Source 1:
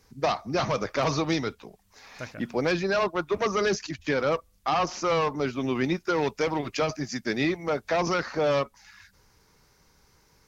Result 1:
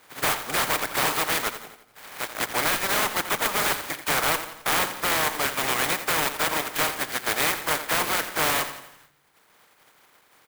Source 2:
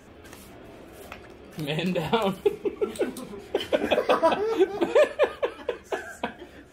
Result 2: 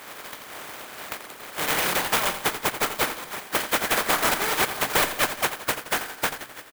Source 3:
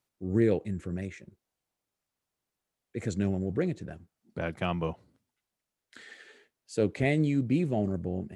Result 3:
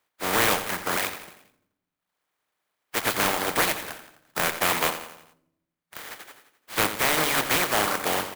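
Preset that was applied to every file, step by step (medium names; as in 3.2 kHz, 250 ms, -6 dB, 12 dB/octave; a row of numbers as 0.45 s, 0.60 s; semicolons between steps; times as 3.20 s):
spectral contrast reduction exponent 0.17; high-pass 78 Hz 24 dB/octave; band-stop 2.7 kHz, Q 18; reverb removal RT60 0.99 s; in parallel at -2.5 dB: gain riding within 4 dB 0.5 s; on the sum: overdrive pedal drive 22 dB, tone 2.4 kHz, clips at -3.5 dBFS; on a send: feedback delay 86 ms, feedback 50%, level -11 dB; on the sum: simulated room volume 2500 m³, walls furnished, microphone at 0.47 m; resampled via 11.025 kHz; sampling jitter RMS 0.051 ms; normalise loudness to -24 LUFS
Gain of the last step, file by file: -6.0 dB, -5.0 dB, -3.0 dB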